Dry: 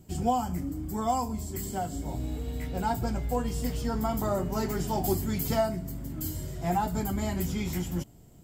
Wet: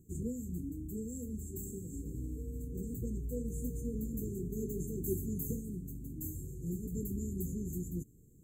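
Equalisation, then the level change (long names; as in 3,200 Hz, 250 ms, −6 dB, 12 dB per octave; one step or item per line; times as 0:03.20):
linear-phase brick-wall band-stop 500–6,200 Hz
−7.0 dB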